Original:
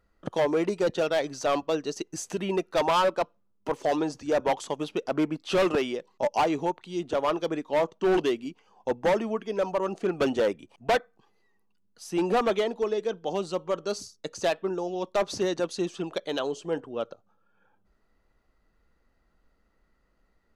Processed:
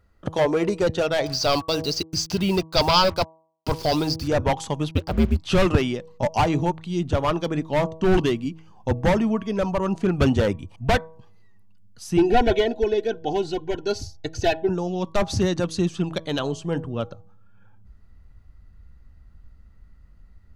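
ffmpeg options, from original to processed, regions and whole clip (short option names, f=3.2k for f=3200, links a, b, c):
-filter_complex "[0:a]asettb=1/sr,asplit=3[a][b][c];[a]atrim=end=1.264[d];[b]atrim=start=1.26:end=4.28,asetpts=PTS-STARTPTS,afade=t=in:d=0.004:c=qsin,afade=t=out:st=3.016:d=0.004:c=qsin,lowpass=f=4.8k:t=q:w=8.1,bandreject=f=1.8k:w=5.9,acrusher=bits=6:mix=0:aa=0.5[e];[c]atrim=start=4.276[f];[d][e]acrossfade=d=0.004:c1=hsin:c2=qsin[g];[g][f]acrossfade=d=0.004:c1=qsin:c2=hsin,asettb=1/sr,asplit=3[h][i][j];[h]atrim=end=4.914[k];[i]atrim=start=4.91:end=5.37,asetpts=PTS-STARTPTS,afade=t=in:d=0.004:c=qsin,afade=t=out:st=0.456:d=0.004:c=qsin,highshelf=f=6k:t=q:w=3:g=-10.5,aeval=exprs='val(0)*sin(2*PI*88*n/s)':c=same,acrusher=bits=7:mix=0:aa=0.5[l];[j]atrim=start=5.366[m];[k][l]acrossfade=d=0.004:c1=hsin:c2=qsin[n];[n][m]acrossfade=d=0.004:c1=qsin:c2=hsin,asettb=1/sr,asplit=3[o][p][q];[o]atrim=end=12.174[r];[p]atrim=start=12.17:end=14.69,asetpts=PTS-STARTPTS,afade=t=in:d=0.004:c=qsin,afade=t=out:st=2.516:d=0.004:c=qsin,asuperstop=centerf=1200:order=20:qfactor=3.9,equalizer=f=9k:w=1.2:g=-12,aecho=1:1:2.7:0.84,atrim=end_sample=111132[s];[q]atrim=start=14.686[t];[r][s]acrossfade=d=0.004:c1=hsin:c2=qsin[u];[u][t]acrossfade=d=0.004:c1=qsin:c2=hsin,equalizer=f=88:t=o:w=1:g=10.5,bandreject=f=160.9:t=h:w=4,bandreject=f=321.8:t=h:w=4,bandreject=f=482.7:t=h:w=4,bandreject=f=643.6:t=h:w=4,bandreject=f=804.5:t=h:w=4,bandreject=f=965.4:t=h:w=4,bandreject=f=1.1263k:t=h:w=4,asubboost=boost=5.5:cutoff=170,volume=4.5dB"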